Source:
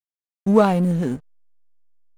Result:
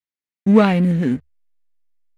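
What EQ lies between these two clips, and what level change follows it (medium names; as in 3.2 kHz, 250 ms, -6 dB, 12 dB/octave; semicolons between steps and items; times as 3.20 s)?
ten-band graphic EQ 125 Hz +7 dB, 250 Hz +11 dB, 500 Hz +3 dB, 2 kHz +12 dB, 4 kHz +4 dB; dynamic bell 2.7 kHz, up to +6 dB, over -30 dBFS, Q 0.72; peaking EQ 72 Hz +9.5 dB 0.39 oct; -6.5 dB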